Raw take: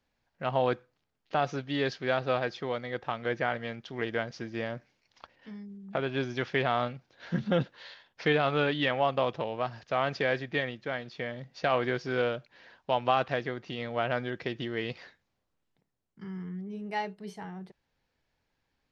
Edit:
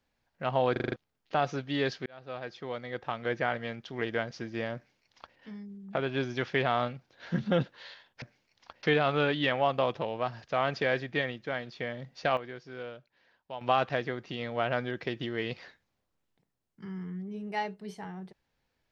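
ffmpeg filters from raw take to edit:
-filter_complex "[0:a]asplit=12[a][b][c][d][e][f][g][h][i][j][k][l];[a]atrim=end=0.762[m];[b]atrim=start=0.718:end=0.762[n];[c]atrim=start=0.718:end=0.762[o];[d]atrim=start=0.718:end=0.762[p];[e]atrim=start=0.718:end=0.762[q];[f]atrim=start=0.718:end=0.762[r];[g]atrim=start=0.958:end=2.06,asetpts=PTS-STARTPTS,afade=t=out:st=1.098:d=0.004:c=hsin[s];[h]atrim=start=2.06:end=8.222,asetpts=PTS-STARTPTS,afade=t=in:d=1.54:c=qsin[t];[i]atrim=start=4.758:end=5.372[u];[j]atrim=start=8.218:end=11.76,asetpts=PTS-STARTPTS,afade=t=out:st=3.372:d=0.17:c=log:silence=0.237137[v];[k]atrim=start=11.76:end=13,asetpts=PTS-STARTPTS,volume=-12.5dB[w];[l]atrim=start=13,asetpts=PTS-STARTPTS,afade=t=in:d=0.17:c=log:silence=0.237137[x];[m][n]acrossfade=d=0.004:c1=hsin:c2=hsin[y];[y][o]acrossfade=d=0.004:c1=hsin:c2=hsin[z];[z][p]acrossfade=d=0.004:c1=hsin:c2=hsin[aa];[aa][q]acrossfade=d=0.004:c1=hsin:c2=hsin[ab];[ab][r]acrossfade=d=0.004:c1=hsin:c2=hsin[ac];[s][t]concat=n=2:v=0:a=1[ad];[ac][ad]acrossfade=d=0.004:c1=hsin:c2=hsin[ae];[ae][u]acrossfade=d=0.004:c1=hsin:c2=hsin[af];[v][w][x]concat=n=3:v=0:a=1[ag];[af][ag]acrossfade=d=0.004:c1=hsin:c2=hsin"

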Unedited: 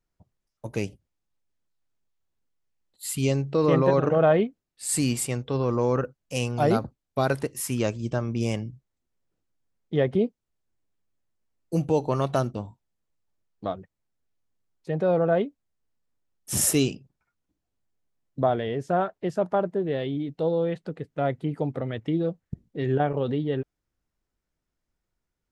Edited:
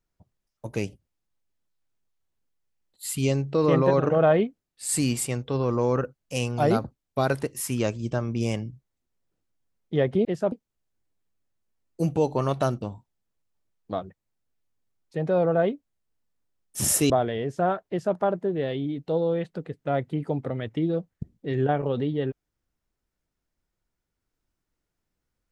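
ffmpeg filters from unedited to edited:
-filter_complex "[0:a]asplit=4[a][b][c][d];[a]atrim=end=10.252[e];[b]atrim=start=19.198:end=19.472[f];[c]atrim=start=10.248:end=16.832[g];[d]atrim=start=18.408[h];[e][f]acrossfade=d=0.004:c1=hsin:c2=hsin[i];[i][g]acrossfade=d=0.004:c1=hsin:c2=hsin[j];[j][h]acrossfade=d=0.004:c1=hsin:c2=hsin"

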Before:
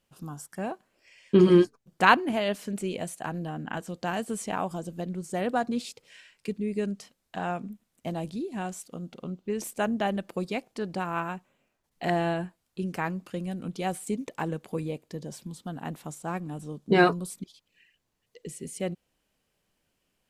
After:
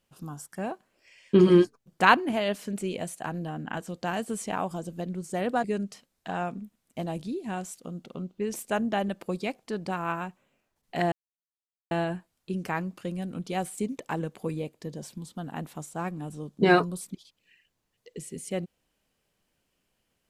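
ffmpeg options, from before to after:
-filter_complex "[0:a]asplit=3[a][b][c];[a]atrim=end=5.642[d];[b]atrim=start=6.718:end=12.2,asetpts=PTS-STARTPTS,afade=t=out:st=5.478:d=0.004:c=hsin,apad=pad_dur=0.79[e];[c]atrim=start=12.2,asetpts=PTS-STARTPTS,afade=t=in:d=0.004:c=hsin[f];[e][f]concat=n=2:v=0:a=1[g];[d][g]acrossfade=d=0.004:c1=hsin:c2=hsin"

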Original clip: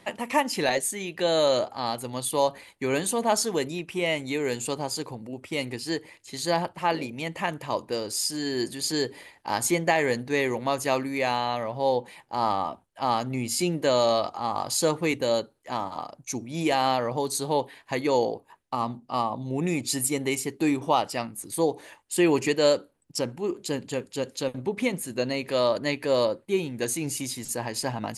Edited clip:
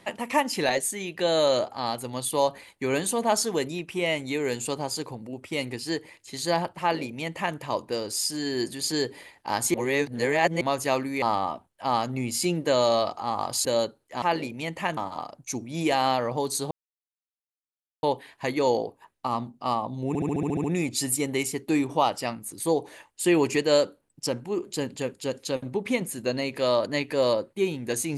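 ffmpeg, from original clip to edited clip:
-filter_complex "[0:a]asplit=16[a][b][c][d][e][f][g][h][i][j][k][l][m][n][o][p];[a]atrim=end=9.742[q];[b]atrim=start=9.738:end=10.612,asetpts=PTS-STARTPTS,areverse[r];[c]atrim=start=10.608:end=11.222[s];[d]atrim=start=12.388:end=14.822[t];[e]atrim=start=15.198:end=15.772[u];[f]atrim=start=6.808:end=7.562[v];[g]atrim=start=15.768:end=17.51,asetpts=PTS-STARTPTS,afade=t=out:st=1.738:d=0.004:c=hsin,apad=pad_dur=1.32[w];[h]atrim=start=17.51:end=19.632,asetpts=PTS-STARTPTS,afade=t=in:d=0.004:c=hsin[x];[i]atrim=start=19.558:end=19.632[y];[j]atrim=start=19.558:end=19.632[z];[k]atrim=start=19.558:end=19.632[aa];[l]atrim=start=19.558:end=19.632[ab];[m]atrim=start=19.558:end=19.632[ac];[n]atrim=start=19.558:end=19.632[ad];[o]atrim=start=19.558:end=19.632[ae];[p]atrim=start=19.558[af];[q][r]acrossfade=d=0.004:c1=hsin:c2=hsin[ag];[ag][s]acrossfade=d=0.004:c1=hsin:c2=hsin[ah];[ah][t]acrossfade=d=0.004:c1=hsin:c2=hsin[ai];[ai][u]acrossfade=d=0.004:c1=hsin:c2=hsin[aj];[aj][v]acrossfade=d=0.004:c1=hsin:c2=hsin[ak];[w][x]concat=n=2:v=0:a=1[al];[ak][al]acrossfade=d=0.004:c1=hsin:c2=hsin[am];[am][y]acrossfade=d=0.004:c1=hsin:c2=hsin[an];[an][z]acrossfade=d=0.004:c1=hsin:c2=hsin[ao];[ao][aa]acrossfade=d=0.004:c1=hsin:c2=hsin[ap];[ap][ab]acrossfade=d=0.004:c1=hsin:c2=hsin[aq];[aq][ac]acrossfade=d=0.004:c1=hsin:c2=hsin[ar];[ar][ad]acrossfade=d=0.004:c1=hsin:c2=hsin[as];[as][ae]acrossfade=d=0.004:c1=hsin:c2=hsin[at];[at][af]acrossfade=d=0.004:c1=hsin:c2=hsin"

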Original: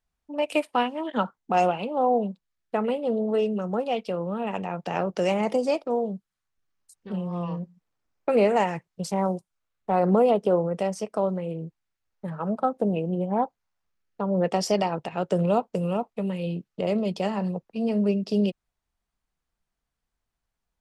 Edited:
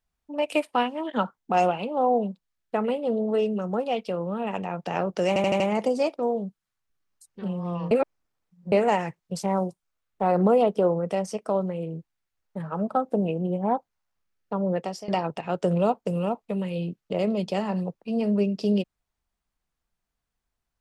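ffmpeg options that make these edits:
-filter_complex "[0:a]asplit=8[a][b][c][d][e][f][g][h];[a]atrim=end=5.362[i];[b]atrim=start=5.278:end=5.362[j];[c]atrim=start=5.278:end=5.362[k];[d]atrim=start=5.278:end=5.362[l];[e]atrim=start=5.278:end=7.592[m];[f]atrim=start=7.588:end=8.402,asetpts=PTS-STARTPTS,areverse[n];[g]atrim=start=8.398:end=14.76,asetpts=PTS-STARTPTS,afade=t=out:st=5.872:d=0.49:silence=0.0841395[o];[h]atrim=start=14.76,asetpts=PTS-STARTPTS,afade=t=in:d=0.004:c=hsin:silence=0.0841395[p];[i][j]acrossfade=d=0.004:c1=hsin:c2=hsin[q];[q][k]acrossfade=d=0.004:c1=hsin:c2=hsin[r];[r][l]acrossfade=d=0.004:c1=hsin:c2=hsin[s];[s][m]acrossfade=d=0.004:c1=hsin:c2=hsin[t];[t][n]acrossfade=d=0.004:c1=hsin:c2=hsin[u];[o][p]concat=n=2:v=0:a=1[v];[u][v]acrossfade=d=0.004:c1=hsin:c2=hsin"

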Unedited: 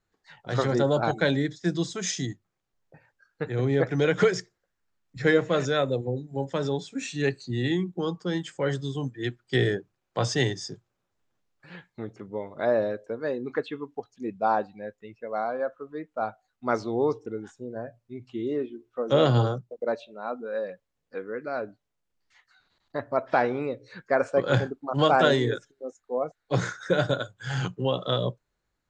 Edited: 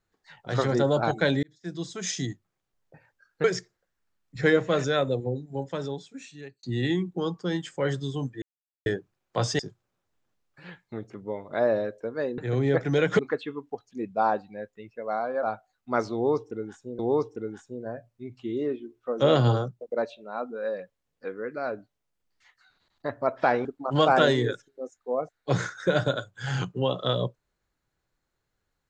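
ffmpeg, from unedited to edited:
-filter_complex "[0:a]asplit=12[a][b][c][d][e][f][g][h][i][j][k][l];[a]atrim=end=1.43,asetpts=PTS-STARTPTS,afade=t=out:st=1.426:d=0.004:c=hsin[m];[b]atrim=start=1.43:end=3.442,asetpts=PTS-STARTPTS,afade=t=in:d=0.77[n];[c]atrim=start=4.248:end=7.44,asetpts=PTS-STARTPTS,afade=t=out:st=1.862:d=1.33[o];[d]atrim=start=7.44:end=9.23,asetpts=PTS-STARTPTS,afade=t=in:d=0.004:c=hsin,afade=t=out:st=1.786:d=0.004:c=hsin[p];[e]atrim=start=9.23:end=9.67,asetpts=PTS-STARTPTS,volume=0[q];[f]atrim=start=9.67:end=10.402,asetpts=PTS-STARTPTS,afade=t=in:d=0.004:c=hsin[r];[g]atrim=start=10.648:end=13.442[s];[h]atrim=start=3.438:end=4.252[t];[i]atrim=start=13.438:end=15.682[u];[j]atrim=start=16.178:end=17.742[v];[k]atrim=start=16.888:end=23.552[w];[l]atrim=start=24.678[x];[m][n]concat=n=2:v=0:a=1[y];[o][p][q][r]concat=n=4:v=0:a=1[z];[y][z]acrossfade=d=0.004:c1=hsin:c2=hsin[aa];[aa][s]acrossfade=d=0.004:c1=hsin:c2=hsin[ab];[ab][t]acrossfade=d=0.004:c1=hsin:c2=hsin[ac];[ac][u]acrossfade=d=0.004:c1=hsin:c2=hsin[ad];[ad][v]acrossfade=d=0.004:c1=hsin:c2=hsin[ae];[ae][w]acrossfade=d=0.004:c1=hsin:c2=hsin[af];[af][x]acrossfade=d=0.004:c1=hsin:c2=hsin"

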